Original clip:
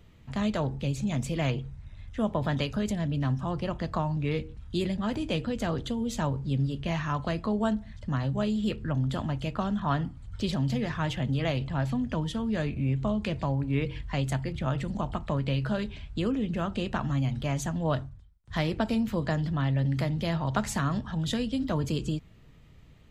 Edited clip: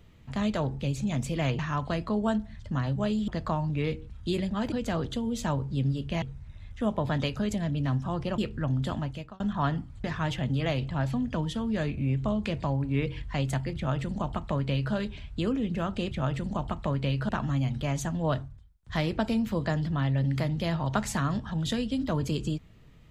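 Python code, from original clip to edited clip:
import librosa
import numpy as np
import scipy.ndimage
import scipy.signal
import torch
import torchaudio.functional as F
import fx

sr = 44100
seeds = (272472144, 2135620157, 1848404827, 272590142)

y = fx.edit(x, sr, fx.swap(start_s=1.59, length_s=2.16, other_s=6.96, other_length_s=1.69),
    fx.cut(start_s=5.19, length_s=0.27),
    fx.fade_out_span(start_s=9.24, length_s=0.43),
    fx.cut(start_s=10.31, length_s=0.52),
    fx.duplicate(start_s=14.55, length_s=1.18, to_s=16.9), tone=tone)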